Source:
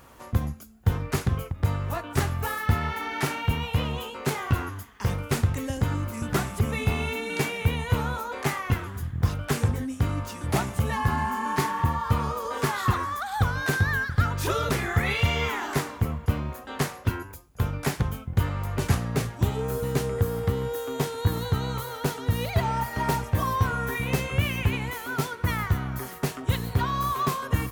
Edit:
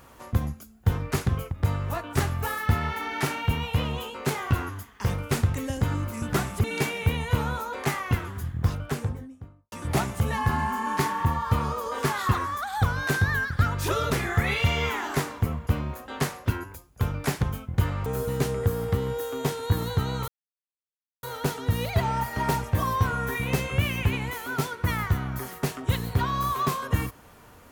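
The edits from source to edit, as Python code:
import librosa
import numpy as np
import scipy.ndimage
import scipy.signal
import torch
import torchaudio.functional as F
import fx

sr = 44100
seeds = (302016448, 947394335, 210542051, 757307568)

y = fx.studio_fade_out(x, sr, start_s=9.07, length_s=1.24)
y = fx.edit(y, sr, fx.cut(start_s=6.64, length_s=0.59),
    fx.cut(start_s=18.65, length_s=0.96),
    fx.insert_silence(at_s=21.83, length_s=0.95), tone=tone)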